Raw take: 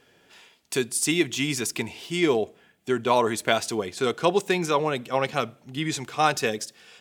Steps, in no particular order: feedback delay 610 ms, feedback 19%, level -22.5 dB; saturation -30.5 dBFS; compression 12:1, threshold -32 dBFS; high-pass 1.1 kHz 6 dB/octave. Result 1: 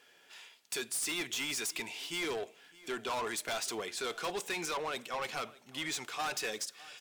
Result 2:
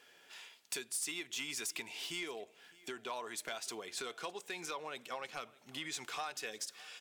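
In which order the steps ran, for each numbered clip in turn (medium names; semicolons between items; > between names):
high-pass > saturation > feedback delay > compression; compression > high-pass > saturation > feedback delay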